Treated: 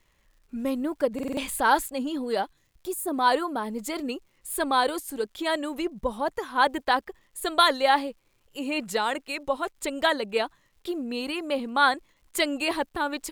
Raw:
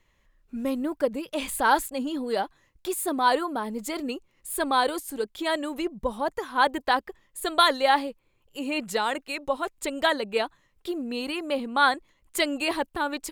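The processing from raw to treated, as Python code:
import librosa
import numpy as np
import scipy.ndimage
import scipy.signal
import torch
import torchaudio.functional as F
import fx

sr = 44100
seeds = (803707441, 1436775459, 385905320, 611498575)

y = fx.peak_eq(x, sr, hz=fx.line((2.44, 620.0), (3.12, 3500.0)), db=-11.5, octaves=2.7, at=(2.44, 3.12), fade=0.02)
y = fx.dmg_crackle(y, sr, seeds[0], per_s=260.0, level_db=-56.0)
y = fx.buffer_glitch(y, sr, at_s=(1.14,), block=2048, repeats=4)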